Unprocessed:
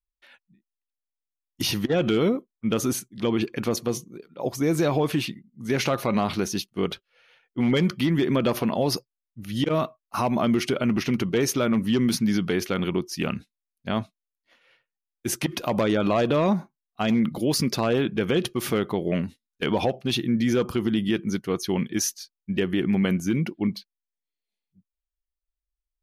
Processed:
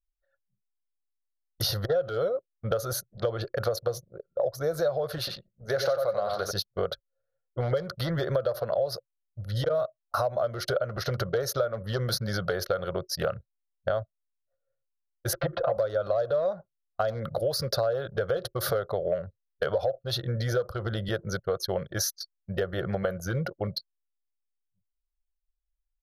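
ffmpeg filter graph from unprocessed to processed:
-filter_complex "[0:a]asettb=1/sr,asplit=3[s0][s1][s2];[s0]atrim=end=5.184[s3];[s1]atrim=start=5.18:end=6.51,asetpts=PTS-STARTPTS,afade=t=in:d=0.004:c=qsin,afade=t=out:st=1.326:d=0.004:c=qsin,lowshelf=f=220:g=-7.5,asplit=2[s4][s5];[s5]adelay=92,lowpass=f=4000:p=1,volume=0.631,asplit=2[s6][s7];[s7]adelay=92,lowpass=f=4000:p=1,volume=0.17,asplit=2[s8][s9];[s9]adelay=92,lowpass=f=4000:p=1,volume=0.17[s10];[s4][s6][s8][s10]amix=inputs=4:normalize=0,atrim=end_sample=58653[s11];[s2]atrim=start=6.506[s12];[s3][s11]acrossfade=d=0.004:c1=hsin:c2=qsin[s13];[s13][s12]acrossfade=d=0.004:c1=qsin:c2=hsin,asettb=1/sr,asplit=3[s14][s15][s16];[s14]atrim=end=15.334[s17];[s15]atrim=start=15.33:end=15.77,asetpts=PTS-STARTPTS,afade=t=in:d=0.004:c=qsin,afade=t=out:st=0.436:d=0.004:c=qsin,lowpass=f=2800:w=0.5412,lowpass=f=2800:w=1.3066,aecho=1:1:5.9:0.97,atrim=end_sample=19404[s18];[s16]atrim=start=15.766[s19];[s17][s18]acrossfade=d=0.004:c1=hsin:c2=qsin[s20];[s20][s19]acrossfade=d=0.004:c1=qsin:c2=hsin,anlmdn=1.58,firequalizer=gain_entry='entry(110,0);entry(250,-28);entry(550,12);entry(920,-10);entry(1400,4);entry(2400,-22);entry(4100,1);entry(7800,-15);entry(11000,-2)':delay=0.05:min_phase=1,acompressor=threshold=0.0251:ratio=6,volume=2.24"

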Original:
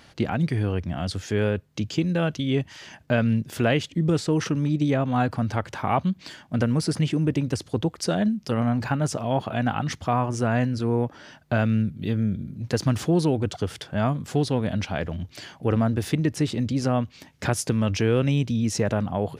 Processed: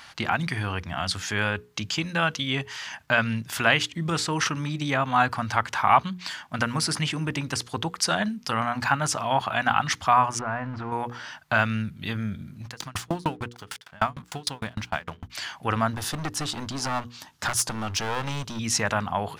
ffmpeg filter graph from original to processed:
-filter_complex "[0:a]asettb=1/sr,asplit=3[s0][s1][s2];[s0]atrim=end=10.394[s3];[s1]atrim=start=10.39:end=10.92,asetpts=PTS-STARTPTS,afade=t=in:d=0.004:c=qsin,afade=t=out:st=0.526:d=0.004:c=qsin,aeval=exprs='val(0)+0.5*0.0251*sgn(val(0))':c=same,lowpass=1400,acompressor=threshold=0.0708:ratio=4:attack=3.2:release=140:knee=1:detection=peak[s4];[s2]atrim=start=10.916[s5];[s3][s4]acrossfade=d=0.004:c1=hsin:c2=qsin[s6];[s6][s5]acrossfade=d=0.004:c1=qsin:c2=hsin,asettb=1/sr,asplit=3[s7][s8][s9];[s7]atrim=end=12.654[s10];[s8]atrim=start=12.65:end=15.3,asetpts=PTS-STARTPTS,afade=t=in:d=0.004:c=qsin,afade=t=out:st=2.646:d=0.004:c=qsin,acontrast=35,aeval=exprs='sgn(val(0))*max(abs(val(0))-0.00794,0)':c=same,aeval=exprs='val(0)*pow(10,-36*if(lt(mod(6.6*n/s,1),2*abs(6.6)/1000),1-mod(6.6*n/s,1)/(2*abs(6.6)/1000),(mod(6.6*n/s,1)-2*abs(6.6)/1000)/(1-2*abs(6.6)/1000))/20)':c=same[s11];[s9]atrim=start=15.296[s12];[s10][s11]acrossfade=d=0.004:c1=hsin:c2=qsin[s13];[s13][s12]acrossfade=d=0.004:c1=qsin:c2=hsin,asettb=1/sr,asplit=3[s14][s15][s16];[s14]atrim=end=15.944[s17];[s15]atrim=start=15.94:end=18.59,asetpts=PTS-STARTPTS,afade=t=in:d=0.004:c=qsin,afade=t=out:st=2.646:d=0.004:c=qsin,equalizer=f=2200:w=2.3:g=-10,aeval=exprs='clip(val(0),-1,0.0447)':c=same[s18];[s16]atrim=start=18.586[s19];[s17][s18]acrossfade=d=0.004:c1=hsin:c2=qsin[s20];[s20][s19]acrossfade=d=0.004:c1=qsin:c2=hsin,lowshelf=f=690:t=q:w=1.5:g=-11.5,bandreject=f=60:t=h:w=6,bandreject=f=120:t=h:w=6,bandreject=f=180:t=h:w=6,bandreject=f=240:t=h:w=6,bandreject=f=300:t=h:w=6,bandreject=f=360:t=h:w=6,bandreject=f=420:t=h:w=6,bandreject=f=480:t=h:w=6,volume=2.11"

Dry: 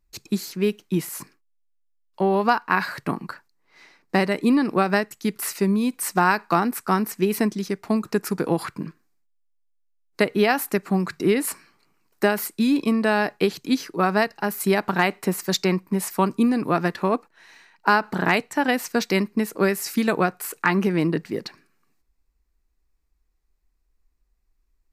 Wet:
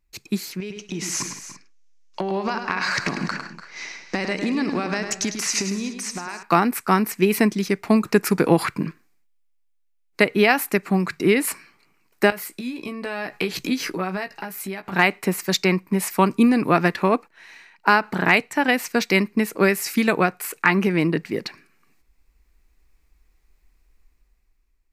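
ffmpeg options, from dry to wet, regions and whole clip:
-filter_complex "[0:a]asettb=1/sr,asplit=3[s0][s1][s2];[s0]atrim=end=0.604[s3];[s1]atrim=start=0.6:end=6.43,asetpts=PTS-STARTPTS,afade=t=in:d=0.004:c=qsin,afade=t=out:st=5.826:d=0.004:c=qsin,acompressor=threshold=0.0251:ratio=8:attack=3.2:release=140:knee=1:detection=peak,lowpass=f=6200:t=q:w=4.5,aecho=1:1:103|162|292|339:0.398|0.15|0.178|0.112,atrim=end_sample=257103[s4];[s2]atrim=start=6.426[s5];[s3][s4]acrossfade=d=0.004:c1=hsin:c2=qsin[s6];[s6][s5]acrossfade=d=0.004:c1=qsin:c2=hsin,asettb=1/sr,asplit=3[s7][s8][s9];[s7]atrim=end=12.304[s10];[s8]atrim=start=12.3:end=14.92,asetpts=PTS-STARTPTS,afade=t=in:d=0.004:c=qsin,afade=t=out:st=2.616:d=0.004:c=qsin,acompressor=threshold=0.0224:ratio=4:attack=3.2:release=140:knee=1:detection=peak,asplit=2[s11][s12];[s12]adelay=16,volume=0.473[s13];[s11][s13]amix=inputs=2:normalize=0,atrim=end_sample=115542[s14];[s9]atrim=start=14.916[s15];[s10][s14]acrossfade=d=0.004:c1=hsin:c2=qsin[s16];[s16][s15]acrossfade=d=0.004:c1=qsin:c2=hsin,equalizer=f=2300:t=o:w=0.64:g=6.5,dynaudnorm=f=200:g=9:m=3.76,volume=0.891"

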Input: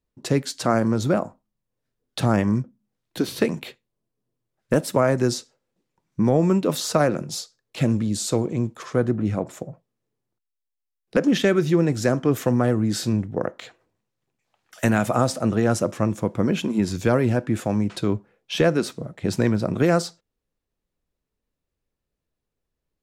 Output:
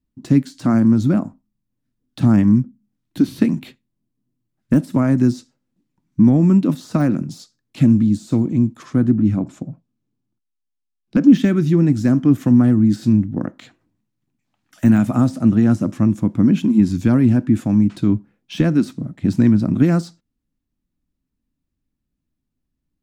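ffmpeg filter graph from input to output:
-filter_complex "[0:a]asettb=1/sr,asplit=3[s0][s1][s2];[s0]atrim=end=9.374[s3];[s1]atrim=start=9.37:end=11.33,asetpts=PTS-STARTPTS,afade=t=in:d=0.004:c=qsin,afade=t=out:st=1.956:d=0.004:c=qsin,lowpass=7700,bandreject=f=1900:w=9.2[s4];[s2]atrim=start=11.326[s5];[s3][s4]acrossfade=d=0.004:c1=hsin:c2=qsin[s6];[s6][s5]acrossfade=d=0.004:c1=qsin:c2=hsin,deesser=0.7,lowshelf=f=350:t=q:w=3:g=8,volume=0.708"

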